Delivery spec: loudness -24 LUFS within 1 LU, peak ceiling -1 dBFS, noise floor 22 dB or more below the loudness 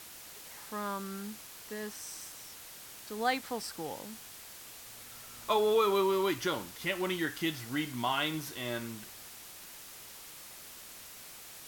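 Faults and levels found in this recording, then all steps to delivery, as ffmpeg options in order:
noise floor -49 dBFS; noise floor target -56 dBFS; loudness -33.5 LUFS; peak -16.0 dBFS; loudness target -24.0 LUFS
-> -af "afftdn=nr=7:nf=-49"
-af "volume=9.5dB"

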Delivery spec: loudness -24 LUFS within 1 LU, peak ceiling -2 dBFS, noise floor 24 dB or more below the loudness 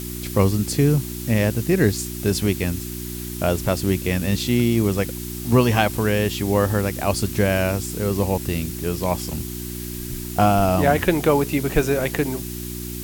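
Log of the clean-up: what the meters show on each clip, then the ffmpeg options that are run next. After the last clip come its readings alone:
hum 60 Hz; harmonics up to 360 Hz; hum level -29 dBFS; noise floor -31 dBFS; noise floor target -46 dBFS; loudness -21.5 LUFS; peak -3.0 dBFS; loudness target -24.0 LUFS
-> -af "bandreject=f=60:t=h:w=4,bandreject=f=120:t=h:w=4,bandreject=f=180:t=h:w=4,bandreject=f=240:t=h:w=4,bandreject=f=300:t=h:w=4,bandreject=f=360:t=h:w=4"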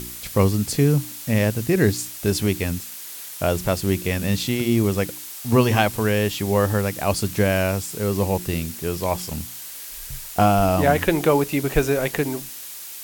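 hum none; noise floor -36 dBFS; noise floor target -46 dBFS
-> -af "afftdn=nr=10:nf=-36"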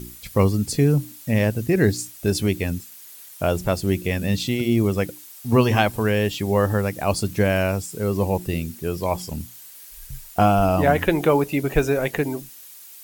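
noise floor -43 dBFS; noise floor target -46 dBFS
-> -af "afftdn=nr=6:nf=-43"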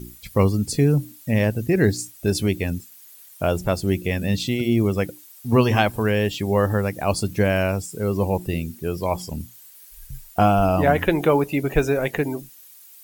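noise floor -47 dBFS; loudness -22.0 LUFS; peak -4.0 dBFS; loudness target -24.0 LUFS
-> -af "volume=-2dB"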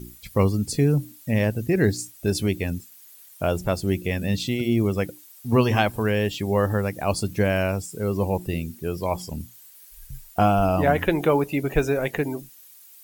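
loudness -24.0 LUFS; peak -6.0 dBFS; noise floor -49 dBFS

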